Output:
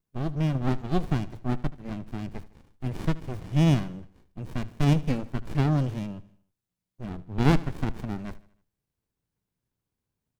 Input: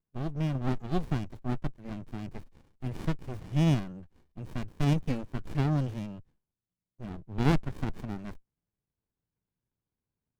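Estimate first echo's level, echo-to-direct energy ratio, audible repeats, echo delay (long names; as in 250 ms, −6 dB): −18.5 dB, −17.5 dB, 3, 77 ms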